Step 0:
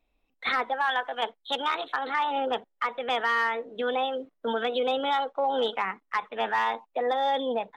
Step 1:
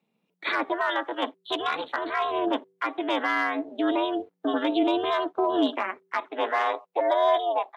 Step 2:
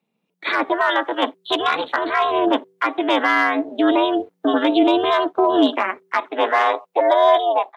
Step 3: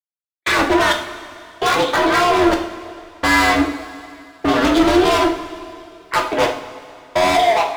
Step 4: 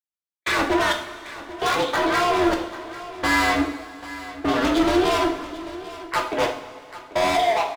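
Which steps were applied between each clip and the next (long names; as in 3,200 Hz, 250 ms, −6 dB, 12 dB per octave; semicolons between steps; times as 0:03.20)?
hum removal 102.9 Hz, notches 3; ring modulation 180 Hz; high-pass filter sweep 290 Hz → 790 Hz, 0:05.95–0:07.75; level +2 dB
automatic gain control gain up to 8.5 dB
gain into a clipping stage and back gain 22 dB; gate pattern "..xx...xxxx." 65 BPM −60 dB; coupled-rooms reverb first 0.48 s, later 2.6 s, from −15 dB, DRR 2 dB; level +8 dB
single-tap delay 790 ms −16 dB; level −5.5 dB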